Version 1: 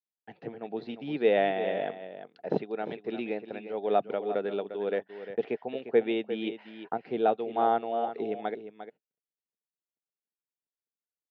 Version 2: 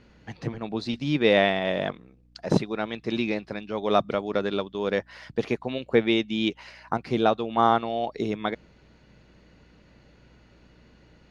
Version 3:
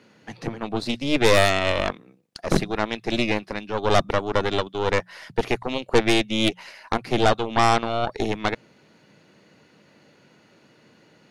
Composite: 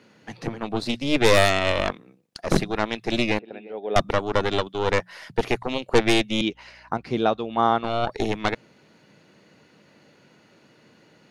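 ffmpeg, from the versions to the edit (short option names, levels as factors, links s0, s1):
-filter_complex "[2:a]asplit=3[s0][s1][s2];[s0]atrim=end=3.392[s3];[0:a]atrim=start=3.388:end=3.962[s4];[s1]atrim=start=3.958:end=6.412[s5];[1:a]atrim=start=6.408:end=7.842[s6];[s2]atrim=start=7.838[s7];[s3][s4]acrossfade=d=0.004:c1=hsin:c2=hsin[s8];[s8][s5]acrossfade=d=0.004:c1=hsin:c2=hsin[s9];[s9][s6]acrossfade=d=0.004:c1=hsin:c2=hsin[s10];[s10][s7]acrossfade=d=0.004:c1=hsin:c2=hsin"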